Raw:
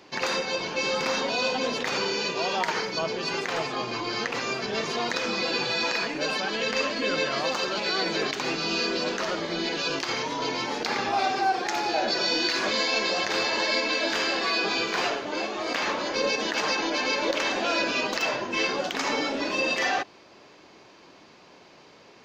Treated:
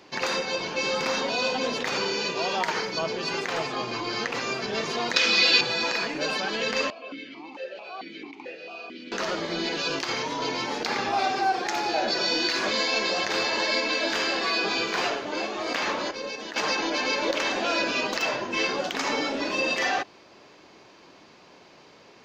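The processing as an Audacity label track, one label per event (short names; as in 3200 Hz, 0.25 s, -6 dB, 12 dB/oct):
5.160000	5.610000	weighting filter D
6.900000	9.120000	vowel sequencer 4.5 Hz
16.110000	16.560000	gain -8.5 dB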